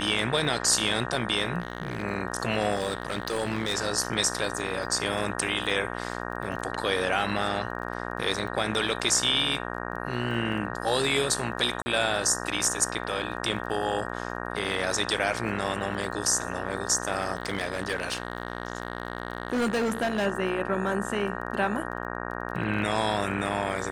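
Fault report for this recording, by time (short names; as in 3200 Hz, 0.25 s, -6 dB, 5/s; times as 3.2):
buzz 60 Hz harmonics 31 -34 dBFS
crackle 21/s -37 dBFS
1.6–2.03 clipped -24.5 dBFS
2.74–3.74 clipped -22.5 dBFS
11.82–11.86 gap 40 ms
17.35–20.27 clipped -22.5 dBFS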